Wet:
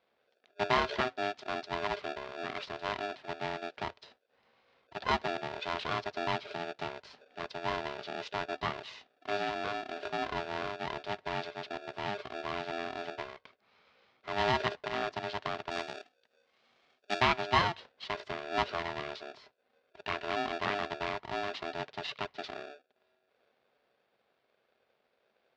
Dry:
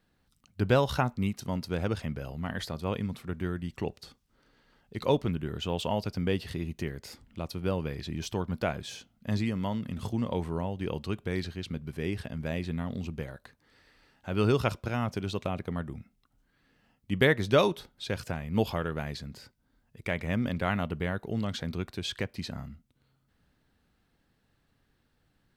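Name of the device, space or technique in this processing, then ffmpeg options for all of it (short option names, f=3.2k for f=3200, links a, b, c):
ring modulator pedal into a guitar cabinet: -filter_complex "[0:a]aeval=exprs='val(0)*sgn(sin(2*PI*510*n/s))':c=same,highpass=91,equalizer=f=91:t=q:w=4:g=-8,equalizer=f=170:t=q:w=4:g=-4,equalizer=f=300:t=q:w=4:g=-10,lowpass=f=4.4k:w=0.5412,lowpass=f=4.4k:w=1.3066,asplit=3[a][b][c];[a]afade=t=out:st=15.7:d=0.02[d];[b]aemphasis=mode=production:type=75kf,afade=t=in:st=15.7:d=0.02,afade=t=out:st=17.2:d=0.02[e];[c]afade=t=in:st=17.2:d=0.02[f];[d][e][f]amix=inputs=3:normalize=0,volume=-3dB"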